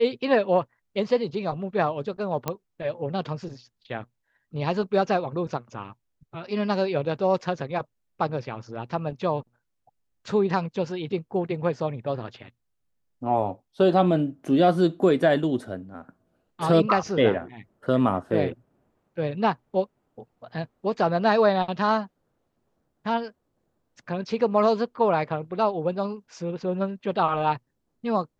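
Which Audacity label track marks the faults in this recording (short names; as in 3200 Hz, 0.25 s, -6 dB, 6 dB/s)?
2.480000	2.480000	pop -12 dBFS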